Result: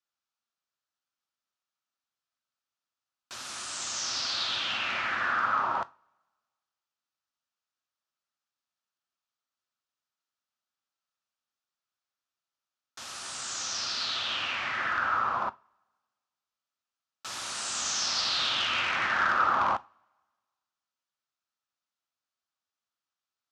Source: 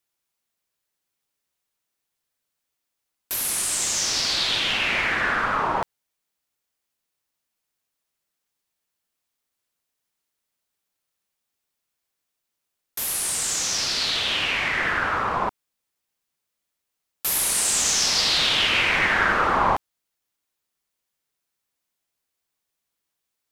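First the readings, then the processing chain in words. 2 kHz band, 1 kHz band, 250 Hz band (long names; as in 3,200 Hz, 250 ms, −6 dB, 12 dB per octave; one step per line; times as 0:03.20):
−7.5 dB, −4.0 dB, −11.5 dB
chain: wavefolder on the positive side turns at −14 dBFS
loudspeaker in its box 110–6,600 Hz, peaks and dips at 170 Hz −9 dB, 320 Hz −5 dB, 450 Hz −9 dB, 1,300 Hz +8 dB, 2,100 Hz −5 dB
coupled-rooms reverb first 0.26 s, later 1.5 s, from −26 dB, DRR 14 dB
level −7.5 dB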